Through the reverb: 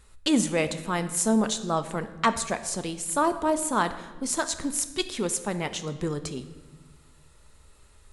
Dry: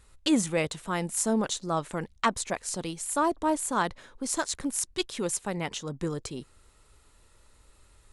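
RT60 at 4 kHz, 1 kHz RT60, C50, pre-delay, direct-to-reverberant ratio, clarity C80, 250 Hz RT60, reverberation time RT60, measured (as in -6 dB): 1.0 s, 1.1 s, 12.5 dB, 4 ms, 9.5 dB, 14.0 dB, 1.8 s, 1.3 s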